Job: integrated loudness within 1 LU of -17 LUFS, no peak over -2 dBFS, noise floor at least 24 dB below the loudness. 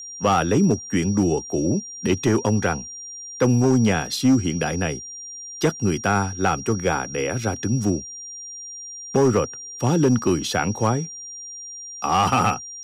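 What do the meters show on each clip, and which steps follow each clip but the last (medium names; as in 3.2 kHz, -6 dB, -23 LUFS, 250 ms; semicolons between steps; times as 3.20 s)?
clipped samples 0.8%; clipping level -11.0 dBFS; steady tone 5.7 kHz; tone level -34 dBFS; loudness -21.5 LUFS; peak level -11.0 dBFS; loudness target -17.0 LUFS
-> clip repair -11 dBFS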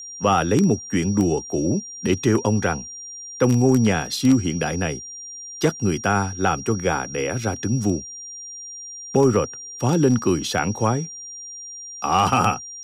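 clipped samples 0.0%; steady tone 5.7 kHz; tone level -34 dBFS
-> band-stop 5.7 kHz, Q 30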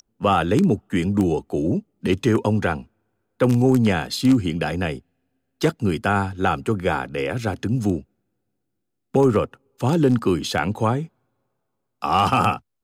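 steady tone not found; loudness -21.5 LUFS; peak level -2.5 dBFS; loudness target -17.0 LUFS
-> trim +4.5 dB; peak limiter -2 dBFS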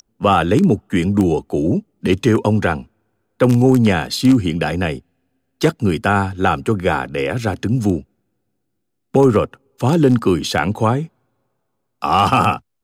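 loudness -17.0 LUFS; peak level -2.0 dBFS; noise floor -72 dBFS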